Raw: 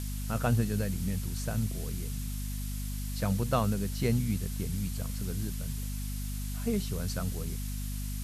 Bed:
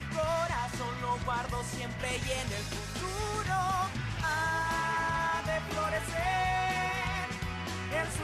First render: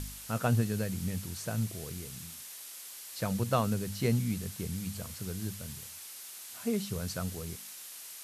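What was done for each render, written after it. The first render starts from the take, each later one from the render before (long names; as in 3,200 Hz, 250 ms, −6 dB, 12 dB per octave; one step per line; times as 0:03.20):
hum removal 50 Hz, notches 5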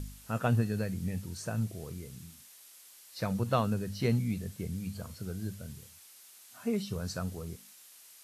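noise reduction from a noise print 9 dB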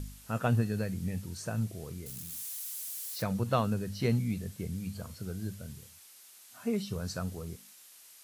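0:02.06–0:03.24: spike at every zero crossing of −37 dBFS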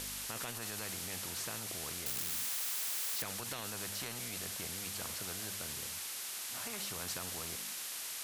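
brickwall limiter −26 dBFS, peak gain reduction 11.5 dB
every bin compressed towards the loudest bin 4 to 1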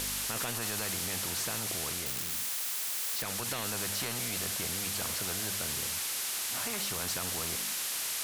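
speech leveller 0.5 s
leveller curve on the samples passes 2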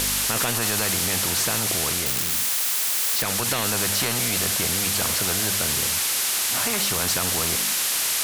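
level +11 dB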